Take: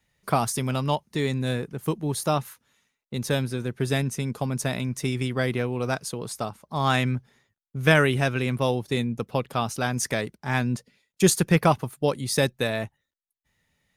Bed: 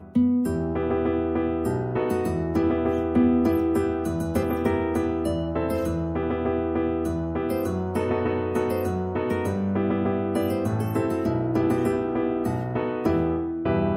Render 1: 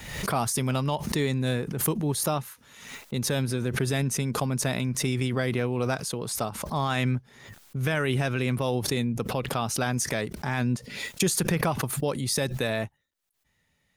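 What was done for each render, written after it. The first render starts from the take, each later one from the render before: peak limiter -16 dBFS, peak gain reduction 11 dB; swell ahead of each attack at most 57 dB/s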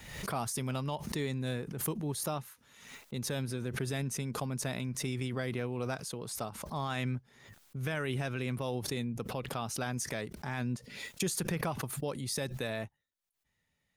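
trim -8.5 dB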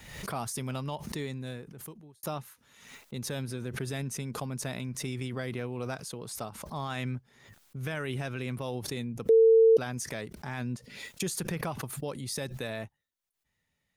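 1.06–2.23 s: fade out; 9.29–9.77 s: bleep 450 Hz -15.5 dBFS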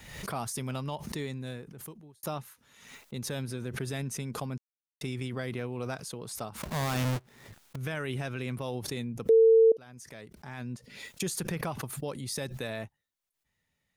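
4.58–5.01 s: mute; 6.56–7.76 s: square wave that keeps the level; 9.72–11.28 s: fade in, from -22 dB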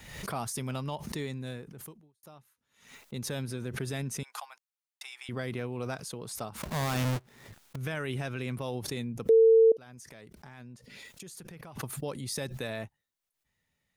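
1.79–3.03 s: dip -17 dB, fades 0.34 s; 4.23–5.29 s: Chebyshev high-pass 780 Hz, order 4; 9.94–11.76 s: compression, threshold -44 dBFS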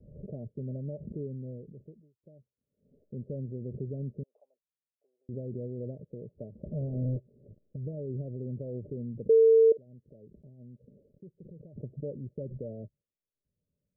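rippled Chebyshev low-pass 610 Hz, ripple 3 dB

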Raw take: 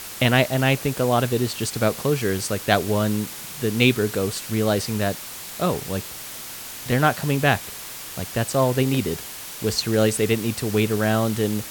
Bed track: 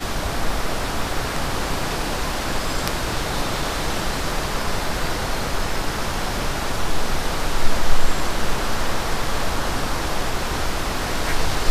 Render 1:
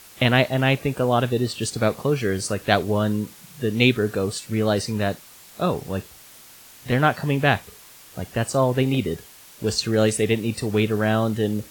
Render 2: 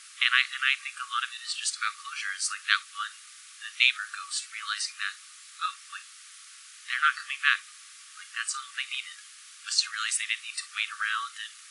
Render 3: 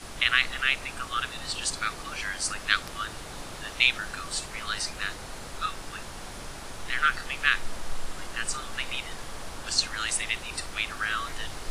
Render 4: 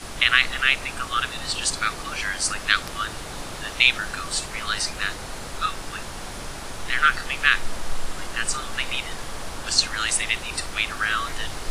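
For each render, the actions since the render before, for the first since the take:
noise print and reduce 11 dB
FFT band-pass 1.1–11 kHz
add bed track -16.5 dB
trim +5.5 dB; peak limiter -1 dBFS, peak gain reduction 2 dB

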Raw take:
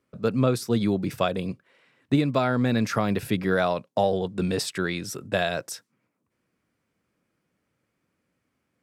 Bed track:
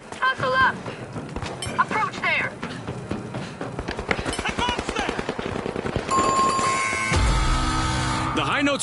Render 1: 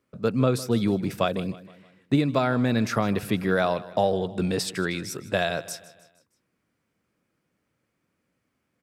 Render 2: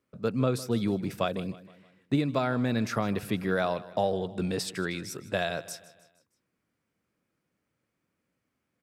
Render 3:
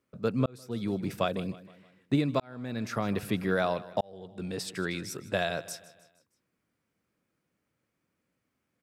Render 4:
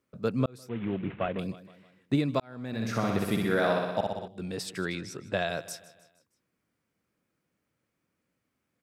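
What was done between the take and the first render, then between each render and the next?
feedback delay 156 ms, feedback 49%, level -18 dB
trim -4.5 dB
0.46–1.09 s: fade in; 2.40–3.17 s: fade in; 4.01–4.93 s: fade in
0.69–1.39 s: CVSD coder 16 kbps; 2.67–4.28 s: flutter echo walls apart 10.5 m, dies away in 1.1 s; 4.95–5.49 s: distance through air 60 m

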